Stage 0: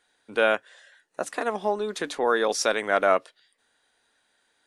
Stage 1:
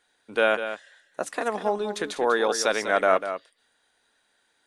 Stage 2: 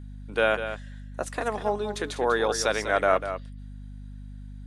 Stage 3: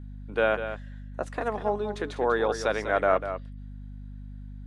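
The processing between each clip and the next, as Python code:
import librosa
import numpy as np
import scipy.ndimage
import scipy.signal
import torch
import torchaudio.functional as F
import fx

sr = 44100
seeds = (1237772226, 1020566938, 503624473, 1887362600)

y1 = x + 10.0 ** (-10.0 / 20.0) * np.pad(x, (int(196 * sr / 1000.0), 0))[:len(x)]
y2 = fx.add_hum(y1, sr, base_hz=50, snr_db=12)
y2 = y2 * librosa.db_to_amplitude(-1.5)
y3 = fx.lowpass(y2, sr, hz=1800.0, slope=6)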